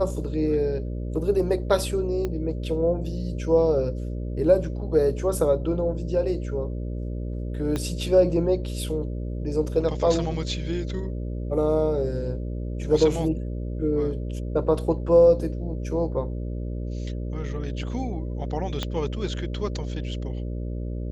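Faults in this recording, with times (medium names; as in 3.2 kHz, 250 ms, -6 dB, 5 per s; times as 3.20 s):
buzz 60 Hz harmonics 10 -30 dBFS
2.25 s: pop -16 dBFS
7.76 s: pop -15 dBFS
18.83 s: pop -13 dBFS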